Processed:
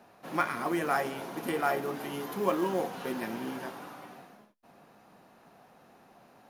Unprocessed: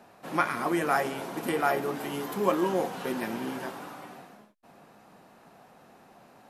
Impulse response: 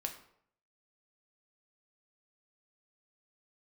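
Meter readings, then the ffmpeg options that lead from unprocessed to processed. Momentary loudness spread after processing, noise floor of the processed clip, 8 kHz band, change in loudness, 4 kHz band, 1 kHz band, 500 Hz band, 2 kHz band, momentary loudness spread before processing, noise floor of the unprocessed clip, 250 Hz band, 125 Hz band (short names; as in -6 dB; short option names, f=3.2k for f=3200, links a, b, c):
13 LU, -60 dBFS, -3.5 dB, -3.0 dB, -3.0 dB, -3.0 dB, -3.0 dB, -3.0 dB, 15 LU, -56 dBFS, -3.0 dB, -3.0 dB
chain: -filter_complex "[0:a]bandreject=f=7.8k:w=5.9,acrusher=bits=7:mode=log:mix=0:aa=0.000001,asplit=2[a][b];[1:a]atrim=start_sample=2205,atrim=end_sample=4410,asetrate=57330,aresample=44100[c];[b][c]afir=irnorm=-1:irlink=0,volume=-14dB[d];[a][d]amix=inputs=2:normalize=0,volume=-4dB"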